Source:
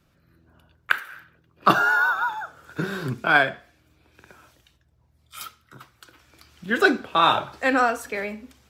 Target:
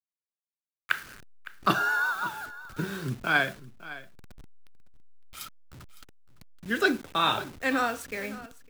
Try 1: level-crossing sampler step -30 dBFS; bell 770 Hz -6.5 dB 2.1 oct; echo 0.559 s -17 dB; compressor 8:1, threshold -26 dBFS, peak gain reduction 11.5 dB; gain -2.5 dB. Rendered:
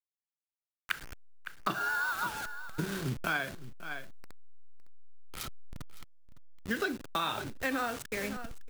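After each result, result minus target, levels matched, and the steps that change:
compressor: peak gain reduction +11.5 dB; level-crossing sampler: distortion +7 dB
remove: compressor 8:1, threshold -26 dBFS, peak gain reduction 11.5 dB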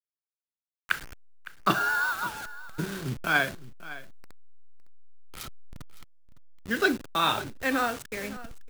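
level-crossing sampler: distortion +7 dB
change: level-crossing sampler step -37 dBFS

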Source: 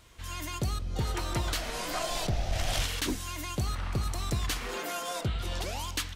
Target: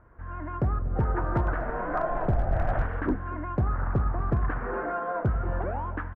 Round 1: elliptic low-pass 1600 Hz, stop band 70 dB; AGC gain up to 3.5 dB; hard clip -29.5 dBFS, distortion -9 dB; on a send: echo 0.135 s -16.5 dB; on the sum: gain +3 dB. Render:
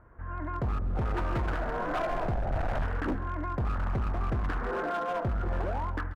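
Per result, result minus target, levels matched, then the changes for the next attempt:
hard clip: distortion +19 dB; echo 0.103 s early
change: hard clip -20.5 dBFS, distortion -27 dB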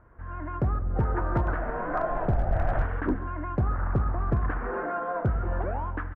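echo 0.103 s early
change: echo 0.238 s -16.5 dB

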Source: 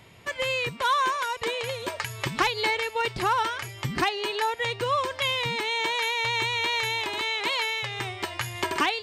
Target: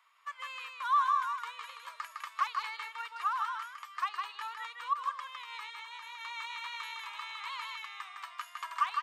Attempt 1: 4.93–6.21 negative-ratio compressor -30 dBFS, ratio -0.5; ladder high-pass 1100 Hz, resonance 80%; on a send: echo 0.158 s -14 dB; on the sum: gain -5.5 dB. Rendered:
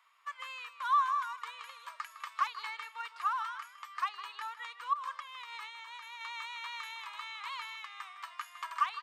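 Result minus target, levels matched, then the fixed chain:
echo-to-direct -10 dB
4.93–6.21 negative-ratio compressor -30 dBFS, ratio -0.5; ladder high-pass 1100 Hz, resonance 80%; on a send: echo 0.158 s -4 dB; on the sum: gain -5.5 dB

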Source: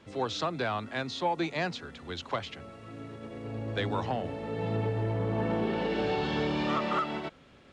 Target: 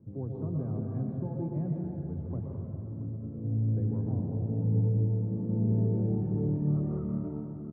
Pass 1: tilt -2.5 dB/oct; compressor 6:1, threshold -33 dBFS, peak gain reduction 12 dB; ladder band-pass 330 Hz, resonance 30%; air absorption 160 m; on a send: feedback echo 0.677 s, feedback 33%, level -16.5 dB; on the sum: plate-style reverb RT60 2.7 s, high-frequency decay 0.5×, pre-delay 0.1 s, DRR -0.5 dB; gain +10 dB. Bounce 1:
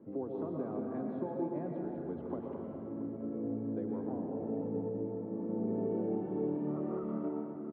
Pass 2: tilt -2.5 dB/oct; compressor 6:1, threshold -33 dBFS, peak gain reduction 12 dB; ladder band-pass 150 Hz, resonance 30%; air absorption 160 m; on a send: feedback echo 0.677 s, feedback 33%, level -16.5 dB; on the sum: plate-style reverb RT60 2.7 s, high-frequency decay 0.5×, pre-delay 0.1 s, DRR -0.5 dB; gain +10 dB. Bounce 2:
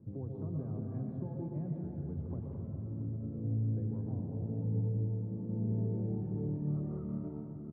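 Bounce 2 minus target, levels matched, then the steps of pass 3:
compressor: peak gain reduction +6.5 dB
tilt -2.5 dB/oct; compressor 6:1, threshold -25 dBFS, peak gain reduction 5.5 dB; ladder band-pass 150 Hz, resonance 30%; air absorption 160 m; on a send: feedback echo 0.677 s, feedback 33%, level -16.5 dB; on the sum: plate-style reverb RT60 2.7 s, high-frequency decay 0.5×, pre-delay 0.1 s, DRR -0.5 dB; gain +10 dB

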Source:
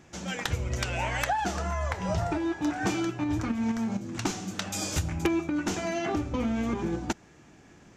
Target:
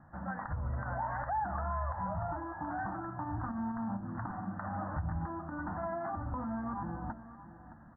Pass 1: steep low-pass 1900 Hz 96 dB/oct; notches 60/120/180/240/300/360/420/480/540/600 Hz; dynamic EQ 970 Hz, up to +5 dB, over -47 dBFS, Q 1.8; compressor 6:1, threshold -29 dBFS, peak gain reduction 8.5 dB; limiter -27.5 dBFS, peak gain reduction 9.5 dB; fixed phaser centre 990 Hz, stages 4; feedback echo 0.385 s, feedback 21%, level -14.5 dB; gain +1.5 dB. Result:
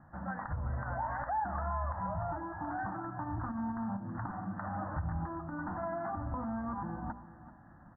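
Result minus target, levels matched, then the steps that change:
echo 0.233 s early
change: feedback echo 0.618 s, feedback 21%, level -14.5 dB

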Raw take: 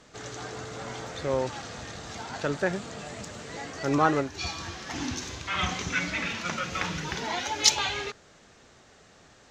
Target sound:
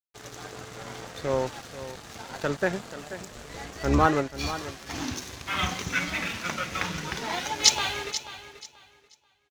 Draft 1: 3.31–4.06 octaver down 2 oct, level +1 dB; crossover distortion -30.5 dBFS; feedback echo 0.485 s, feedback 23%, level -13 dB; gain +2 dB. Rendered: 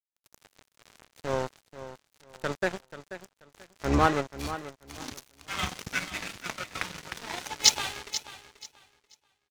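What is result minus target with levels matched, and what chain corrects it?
crossover distortion: distortion +10 dB
3.31–4.06 octaver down 2 oct, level +1 dB; crossover distortion -42 dBFS; feedback echo 0.485 s, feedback 23%, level -13 dB; gain +2 dB

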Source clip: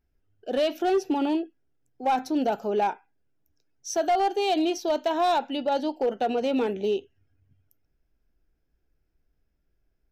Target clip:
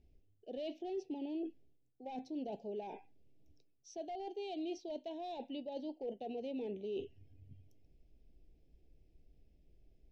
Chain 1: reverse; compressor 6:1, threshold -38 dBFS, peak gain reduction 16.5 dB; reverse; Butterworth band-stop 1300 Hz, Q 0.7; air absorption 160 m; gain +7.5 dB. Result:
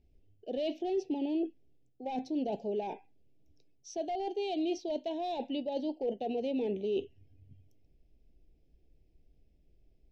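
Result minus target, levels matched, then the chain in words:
compressor: peak gain reduction -8.5 dB
reverse; compressor 6:1, threshold -48 dBFS, peak gain reduction 24.5 dB; reverse; Butterworth band-stop 1300 Hz, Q 0.7; air absorption 160 m; gain +7.5 dB

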